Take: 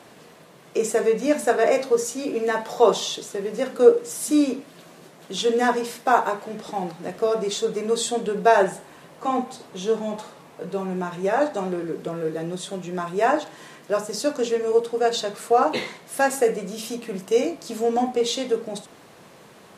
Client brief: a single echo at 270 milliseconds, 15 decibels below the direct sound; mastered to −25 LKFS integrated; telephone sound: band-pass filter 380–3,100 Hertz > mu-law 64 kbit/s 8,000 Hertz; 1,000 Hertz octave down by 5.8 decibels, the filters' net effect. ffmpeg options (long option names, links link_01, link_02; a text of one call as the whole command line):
ffmpeg -i in.wav -af "highpass=380,lowpass=3100,equalizer=frequency=1000:width_type=o:gain=-8.5,aecho=1:1:270:0.178,volume=2.5dB" -ar 8000 -c:a pcm_mulaw out.wav